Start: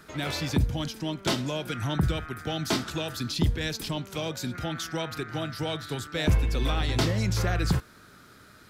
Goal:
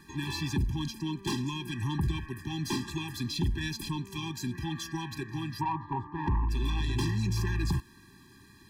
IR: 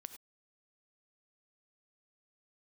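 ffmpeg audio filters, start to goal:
-filter_complex "[0:a]asettb=1/sr,asplit=3[link_01][link_02][link_03];[link_01]atrim=end=5.614[link_04];[link_02]atrim=start=5.61:end=6.49,asetpts=PTS-STARTPTS,afade=type=in:duration=0.004:curve=qsin,afade=type=out:start_time=0.876:duration=0.004:curve=qsin,lowpass=frequency=950:width_type=q:width=8.7[link_05];[link_03]atrim=start=6.486[link_06];[link_04][link_05]acrossfade=duration=0.004:curve1=hsin:curve2=qsin[link_07];[link_07][link_06]acrossfade=duration=0.004:curve1=qsin:curve2=hsin,asoftclip=type=tanh:threshold=-23dB,afftfilt=real='re*eq(mod(floor(b*sr/1024/390),2),0)':imag='im*eq(mod(floor(b*sr/1024/390),2),0)':win_size=1024:overlap=0.75"

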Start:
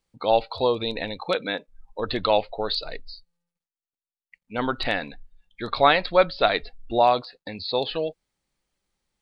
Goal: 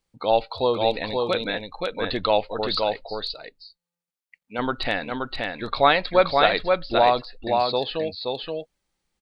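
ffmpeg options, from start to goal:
ffmpeg -i in.wav -filter_complex "[0:a]asettb=1/sr,asplit=3[link_01][link_02][link_03];[link_01]atrim=end=2.814[link_04];[link_02]atrim=start=2.81:end=4.59,asetpts=PTS-STARTPTS,afade=type=in:duration=0.004:curve=qsin,afade=type=out:start_time=1.776:duration=0.004:curve=qsin,highpass=frequency=230:poles=1[link_05];[link_03]atrim=start=4.586[link_06];[link_04][link_05]acrossfade=duration=0.004:curve1=hsin:curve2=qsin[link_07];[link_07][link_06]acrossfade=duration=0.004:curve1=qsin:curve2=hsin,aecho=1:1:525:0.668" out.wav

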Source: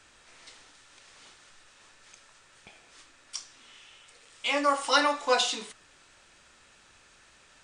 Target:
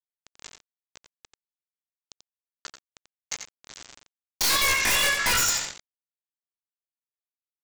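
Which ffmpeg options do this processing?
ffmpeg -i in.wav -filter_complex "[0:a]highpass=frequency=660:width=0.5412,highpass=frequency=660:width=1.3066,aecho=1:1:5.6:0.45,acompressor=threshold=-29dB:ratio=10,asetrate=85689,aresample=44100,atempo=0.514651,aresample=16000,aeval=exprs='val(0)*gte(abs(val(0)),0.00562)':channel_layout=same,aresample=44100,aeval=exprs='0.0794*(cos(1*acos(clip(val(0)/0.0794,-1,1)))-cos(1*PI/2))+0.0398*(cos(2*acos(clip(val(0)/0.0794,-1,1)))-cos(2*PI/2))+0.00316*(cos(7*acos(clip(val(0)/0.0794,-1,1)))-cos(7*PI/2))+0.001*(cos(8*acos(clip(val(0)/0.0794,-1,1)))-cos(8*PI/2))':channel_layout=same,aeval=exprs='0.15*sin(PI/2*8.91*val(0)/0.15)':channel_layout=same,asplit=2[link_01][link_02];[link_02]aecho=0:1:88:0.398[link_03];[link_01][link_03]amix=inputs=2:normalize=0,volume=-2.5dB" out.wav

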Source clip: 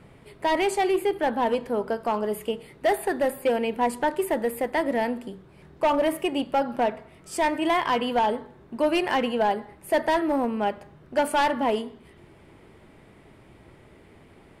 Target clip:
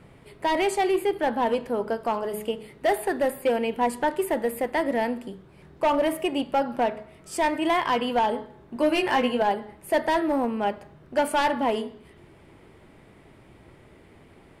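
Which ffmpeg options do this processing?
ffmpeg -i in.wav -filter_complex "[0:a]asettb=1/sr,asplit=3[link_01][link_02][link_03];[link_01]atrim=end=8.744[link_04];[link_02]atrim=start=8.74:end=9.42,asetpts=PTS-STARTPTS,afade=type=in:duration=0.004:curve=qsin,afade=type=out:start_time=0.676:duration=0.004:curve=qsin,asplit=2[link_05][link_06];[link_06]adelay=16,volume=-4dB[link_07];[link_05][link_07]amix=inputs=2:normalize=0,atrim=end_sample=29988[link_08];[link_03]atrim=start=9.416[link_09];[link_04][link_08]acrossfade=duration=0.004:curve1=hsin:curve2=qsin[link_10];[link_10][link_09]acrossfade=duration=0.004:curve1=qsin:curve2=hsin,bandreject=frequency=212.1:width_type=h:width=4,bandreject=frequency=424.2:width_type=h:width=4,bandreject=frequency=636.3:width_type=h:width=4,bandreject=frequency=848.4:width_type=h:width=4,bandreject=frequency=1060.5:width_type=h:width=4,bandreject=frequency=1272.6:width_type=h:width=4,bandreject=frequency=1484.7:width_type=h:width=4,bandreject=frequency=1696.8:width_type=h:width=4,bandreject=frequency=1908.9:width_type=h:width=4,bandreject=frequency=2121:width_type=h:width=4,bandreject=frequency=2333.1:width_type=h:width=4,bandreject=frequency=2545.2:width_type=h:width=4,bandreject=frequency=2757.3:width_type=h:width=4,bandreject=frequency=2969.4:width_type=h:width=4,bandreject=frequency=3181.5:width_type=h:width=4,bandreject=frequency=3393.6:width_type=h:width=4,bandreject=frequency=3605.7:width_type=h:width=4,bandreject=frequency=3817.8:width_type=h:width=4,bandreject=frequency=4029.9:width_type=h:width=4,bandreject=frequency=4242:width_type=h:width=4,bandreject=frequency=4454.1:width_type=h:width=4,bandreject=frequency=4666.2:width_type=h:width=4,bandreject=frequency=4878.3:width_type=h:width=4,bandreject=frequency=5090.4:width_type=h:width=4,bandreject=frequency=5302.5:width_type=h:width=4" out.wav

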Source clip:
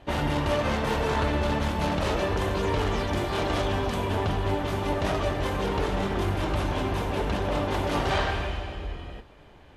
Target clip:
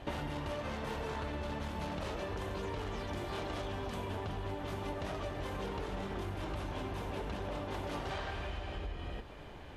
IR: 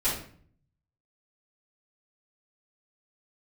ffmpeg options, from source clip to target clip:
-af "acompressor=threshold=-39dB:ratio=8,volume=2.5dB"

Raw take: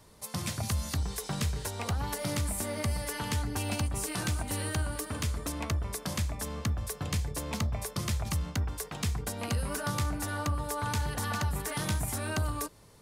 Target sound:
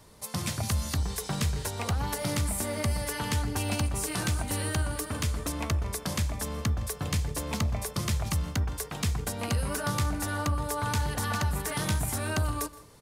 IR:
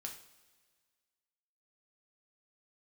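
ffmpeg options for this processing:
-filter_complex "[0:a]asplit=2[link_01][link_02];[link_02]adelay=163.3,volume=-21dB,highshelf=frequency=4000:gain=-3.67[link_03];[link_01][link_03]amix=inputs=2:normalize=0,asplit=2[link_04][link_05];[1:a]atrim=start_sample=2205,adelay=122[link_06];[link_05][link_06]afir=irnorm=-1:irlink=0,volume=-17.5dB[link_07];[link_04][link_07]amix=inputs=2:normalize=0,volume=2.5dB"

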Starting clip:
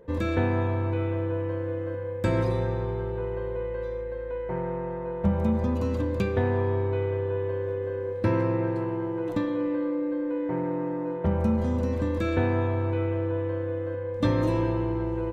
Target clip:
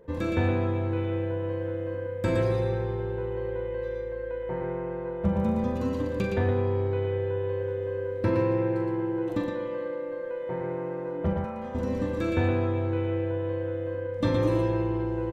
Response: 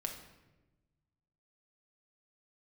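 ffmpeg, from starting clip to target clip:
-filter_complex "[0:a]asettb=1/sr,asplit=3[link_01][link_02][link_03];[link_01]atrim=end=11.334[link_04];[link_02]atrim=start=11.33:end=11.75,asetpts=PTS-STARTPTS,afade=type=in:duration=0.004:curve=qsin,afade=type=out:start_time=0.416:duration=0.004:curve=qsin,acrossover=split=560 2900:gain=0.2 1 0.224[link_05][link_06][link_07];[link_05][link_06][link_07]amix=inputs=3:normalize=0[link_08];[link_03]atrim=start=11.746[link_09];[link_04][link_08]acrossfade=duration=0.004:curve1=hsin:curve2=qsin[link_10];[link_10][link_09]acrossfade=duration=0.004:curve1=qsin:curve2=hsin,aecho=1:1:42|94|117:0.398|0.126|0.631,volume=-2dB"

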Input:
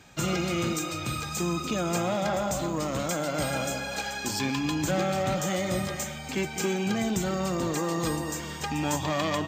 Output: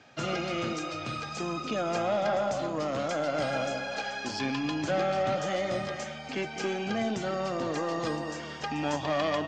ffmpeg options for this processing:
ffmpeg -i in.wav -af "highpass=150,equalizer=frequency=180:width_type=q:width=4:gain=-8,equalizer=frequency=350:width_type=q:width=4:gain=-4,equalizer=frequency=660:width_type=q:width=4:gain=4,equalizer=frequency=960:width_type=q:width=4:gain=-4,equalizer=frequency=2300:width_type=q:width=4:gain=-3,equalizer=frequency=3800:width_type=q:width=4:gain=-5,lowpass=frequency=5100:width=0.5412,lowpass=frequency=5100:width=1.3066,aeval=exprs='0.141*(cos(1*acos(clip(val(0)/0.141,-1,1)))-cos(1*PI/2))+0.001*(cos(8*acos(clip(val(0)/0.141,-1,1)))-cos(8*PI/2))':channel_layout=same" out.wav

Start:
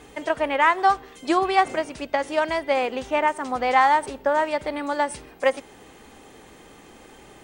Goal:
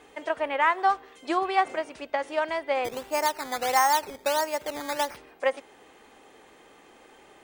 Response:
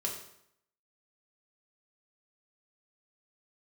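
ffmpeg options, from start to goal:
-filter_complex "[0:a]bass=frequency=250:gain=-12,treble=frequency=4000:gain=-5,asplit=3[link_01][link_02][link_03];[link_01]afade=type=out:start_time=2.84:duration=0.02[link_04];[link_02]acrusher=samples=11:mix=1:aa=0.000001:lfo=1:lforange=11:lforate=1.5,afade=type=in:start_time=2.84:duration=0.02,afade=type=out:start_time=5.16:duration=0.02[link_05];[link_03]afade=type=in:start_time=5.16:duration=0.02[link_06];[link_04][link_05][link_06]amix=inputs=3:normalize=0,volume=-4dB"

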